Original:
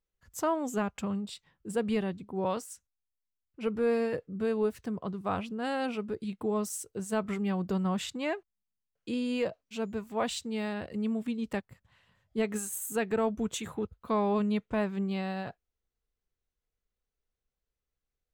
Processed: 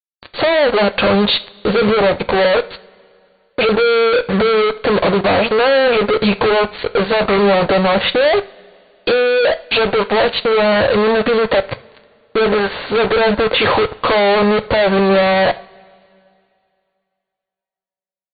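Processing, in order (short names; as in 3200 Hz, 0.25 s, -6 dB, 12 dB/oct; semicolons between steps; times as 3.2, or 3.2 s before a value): treble ducked by the level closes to 860 Hz, closed at -27 dBFS; resonant low shelf 370 Hz -11 dB, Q 3; in parallel at +0.5 dB: compressor, threshold -39 dBFS, peak gain reduction 17 dB; on the sum: fuzz box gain 55 dB, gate -50 dBFS; brick-wall FIR low-pass 4600 Hz; on a send at -11 dB: reverb, pre-delay 3 ms; on the sum: gain +1.5 dB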